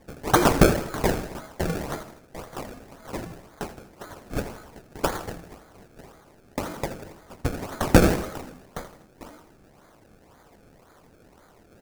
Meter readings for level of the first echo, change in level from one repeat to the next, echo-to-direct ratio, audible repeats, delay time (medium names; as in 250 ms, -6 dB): -14.0 dB, -5.5 dB, -12.5 dB, 3, 81 ms